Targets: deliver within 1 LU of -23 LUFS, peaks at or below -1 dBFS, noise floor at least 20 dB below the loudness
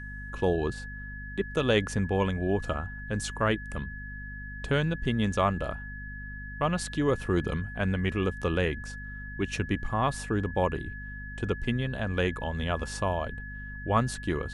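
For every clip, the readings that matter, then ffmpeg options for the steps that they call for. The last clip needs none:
hum 50 Hz; harmonics up to 250 Hz; hum level -39 dBFS; steady tone 1700 Hz; tone level -41 dBFS; loudness -30.5 LUFS; peak -12.0 dBFS; loudness target -23.0 LUFS
-> -af "bandreject=f=50:t=h:w=4,bandreject=f=100:t=h:w=4,bandreject=f=150:t=h:w=4,bandreject=f=200:t=h:w=4,bandreject=f=250:t=h:w=4"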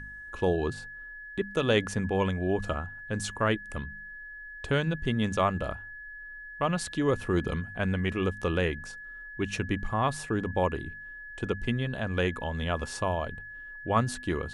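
hum none; steady tone 1700 Hz; tone level -41 dBFS
-> -af "bandreject=f=1.7k:w=30"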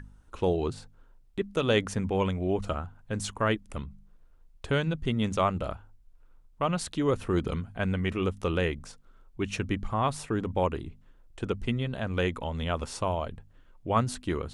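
steady tone none; loudness -30.5 LUFS; peak -11.5 dBFS; loudness target -23.0 LUFS
-> -af "volume=7.5dB"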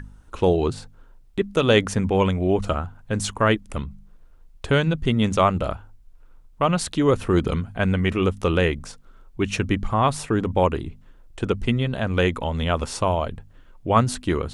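loudness -23.0 LUFS; peak -4.0 dBFS; noise floor -49 dBFS

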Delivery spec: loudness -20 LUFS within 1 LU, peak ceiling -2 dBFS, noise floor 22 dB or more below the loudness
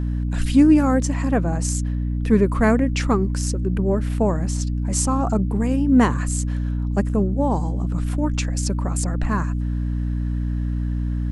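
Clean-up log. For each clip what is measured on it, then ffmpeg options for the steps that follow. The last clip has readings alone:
hum 60 Hz; harmonics up to 300 Hz; hum level -20 dBFS; loudness -21.5 LUFS; peak -3.5 dBFS; loudness target -20.0 LUFS
-> -af "bandreject=f=60:t=h:w=6,bandreject=f=120:t=h:w=6,bandreject=f=180:t=h:w=6,bandreject=f=240:t=h:w=6,bandreject=f=300:t=h:w=6"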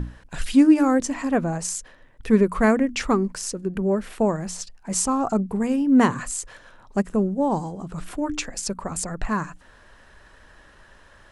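hum none; loudness -23.0 LUFS; peak -5.5 dBFS; loudness target -20.0 LUFS
-> -af "volume=3dB"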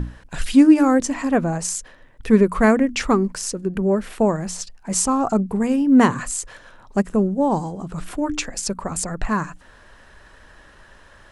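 loudness -20.0 LUFS; peak -2.5 dBFS; noise floor -49 dBFS

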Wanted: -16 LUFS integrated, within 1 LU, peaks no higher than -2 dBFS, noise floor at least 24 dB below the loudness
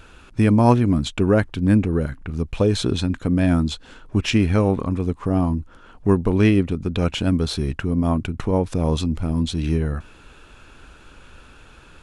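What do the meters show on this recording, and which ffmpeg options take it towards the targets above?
loudness -21.0 LUFS; peak -2.5 dBFS; loudness target -16.0 LUFS
-> -af "volume=5dB,alimiter=limit=-2dB:level=0:latency=1"

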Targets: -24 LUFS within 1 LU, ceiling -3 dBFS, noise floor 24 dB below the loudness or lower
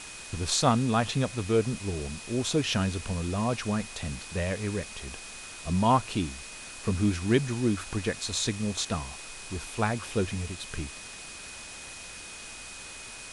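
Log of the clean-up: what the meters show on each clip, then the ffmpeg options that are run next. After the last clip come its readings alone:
steady tone 2500 Hz; tone level -47 dBFS; noise floor -43 dBFS; noise floor target -54 dBFS; loudness -29.5 LUFS; peak -10.5 dBFS; loudness target -24.0 LUFS
-> -af "bandreject=f=2.5k:w=30"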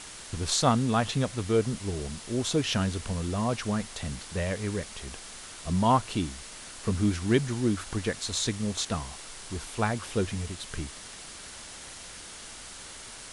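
steady tone none; noise floor -44 dBFS; noise floor target -54 dBFS
-> -af "afftdn=nr=10:nf=-44"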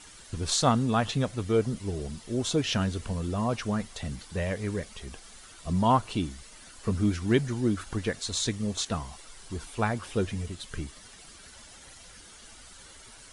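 noise floor -50 dBFS; noise floor target -54 dBFS
-> -af "afftdn=nr=6:nf=-50"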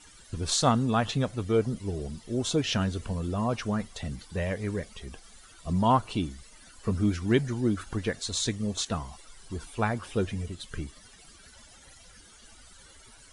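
noise floor -54 dBFS; loudness -29.5 LUFS; peak -10.5 dBFS; loudness target -24.0 LUFS
-> -af "volume=5.5dB"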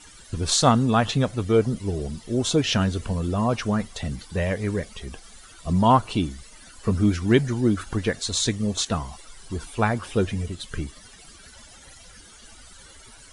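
loudness -24.0 LUFS; peak -5.0 dBFS; noise floor -48 dBFS

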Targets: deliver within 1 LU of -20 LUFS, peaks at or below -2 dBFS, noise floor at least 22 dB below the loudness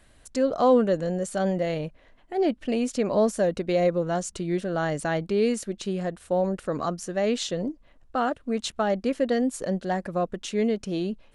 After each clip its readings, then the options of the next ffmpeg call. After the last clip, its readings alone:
loudness -26.5 LUFS; peak -10.0 dBFS; loudness target -20.0 LUFS
-> -af "volume=6.5dB"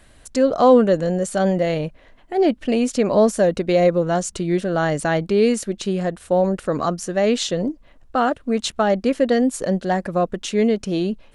loudness -20.0 LUFS; peak -3.5 dBFS; noise floor -51 dBFS

